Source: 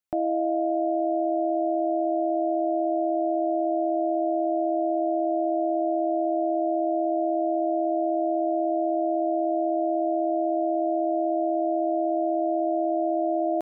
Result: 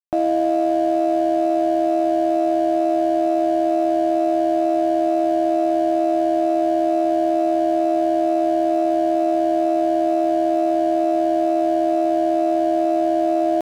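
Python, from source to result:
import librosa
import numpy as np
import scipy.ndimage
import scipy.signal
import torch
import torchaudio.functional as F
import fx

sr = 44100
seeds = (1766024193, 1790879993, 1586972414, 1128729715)

y = np.sign(x) * np.maximum(np.abs(x) - 10.0 ** (-44.0 / 20.0), 0.0)
y = y * librosa.db_to_amplitude(7.0)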